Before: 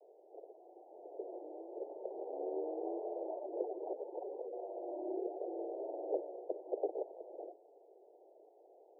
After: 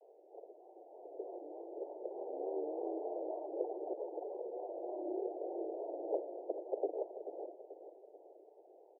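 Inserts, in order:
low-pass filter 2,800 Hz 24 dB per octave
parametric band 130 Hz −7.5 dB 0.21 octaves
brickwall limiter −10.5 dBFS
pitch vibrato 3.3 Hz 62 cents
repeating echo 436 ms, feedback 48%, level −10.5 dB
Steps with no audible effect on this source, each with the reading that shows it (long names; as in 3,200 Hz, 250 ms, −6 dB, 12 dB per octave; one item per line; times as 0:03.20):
low-pass filter 2,800 Hz: nothing at its input above 960 Hz
parametric band 130 Hz: nothing at its input below 270 Hz
brickwall limiter −10.5 dBFS: peak of its input −23.0 dBFS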